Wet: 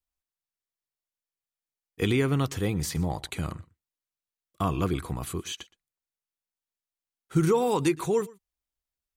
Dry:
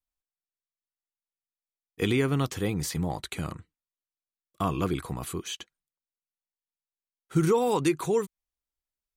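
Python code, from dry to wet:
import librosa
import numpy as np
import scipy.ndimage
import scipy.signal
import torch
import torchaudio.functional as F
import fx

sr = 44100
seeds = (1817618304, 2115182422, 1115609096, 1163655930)

y = fx.peak_eq(x, sr, hz=72.0, db=5.5, octaves=1.1)
y = y + 10.0 ** (-22.5 / 20.0) * np.pad(y, (int(118 * sr / 1000.0), 0))[:len(y)]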